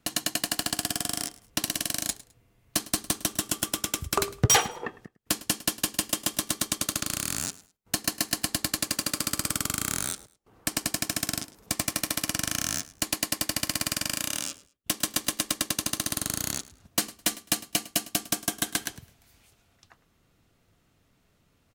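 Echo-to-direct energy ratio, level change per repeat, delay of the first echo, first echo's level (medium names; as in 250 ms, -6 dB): -19.5 dB, -13.0 dB, 105 ms, -19.5 dB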